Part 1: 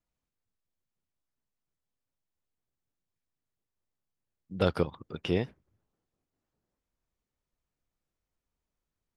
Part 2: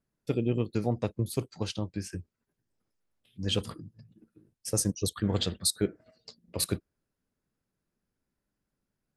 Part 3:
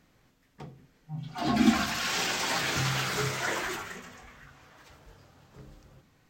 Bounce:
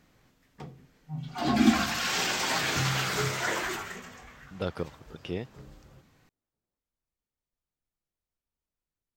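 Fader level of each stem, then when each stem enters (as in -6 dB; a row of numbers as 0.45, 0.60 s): -6.0 dB, off, +1.0 dB; 0.00 s, off, 0.00 s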